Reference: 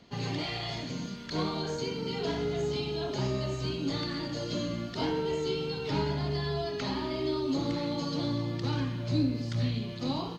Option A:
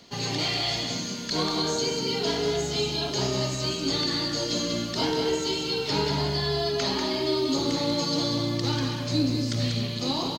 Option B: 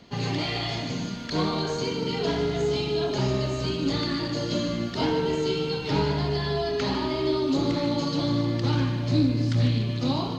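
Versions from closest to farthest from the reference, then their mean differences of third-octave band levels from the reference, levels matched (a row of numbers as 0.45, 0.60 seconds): B, A; 1.5, 5.0 decibels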